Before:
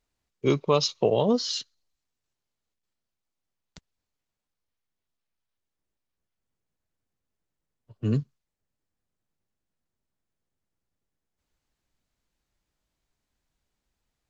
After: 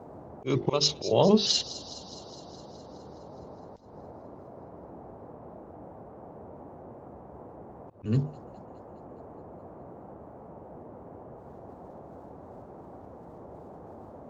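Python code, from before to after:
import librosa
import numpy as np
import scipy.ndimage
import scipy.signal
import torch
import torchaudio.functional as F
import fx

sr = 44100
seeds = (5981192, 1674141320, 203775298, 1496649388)

p1 = fx.pitch_trill(x, sr, semitones=-2.0, every_ms=183)
p2 = fx.hum_notches(p1, sr, base_hz=50, count=9)
p3 = fx.level_steps(p2, sr, step_db=10)
p4 = p2 + (p3 * librosa.db_to_amplitude(1.5))
p5 = fx.dmg_noise_band(p4, sr, seeds[0], low_hz=61.0, high_hz=790.0, level_db=-46.0)
p6 = fx.auto_swell(p5, sr, attack_ms=188.0)
y = p6 + fx.echo_wet_highpass(p6, sr, ms=208, feedback_pct=66, hz=4500.0, wet_db=-12, dry=0)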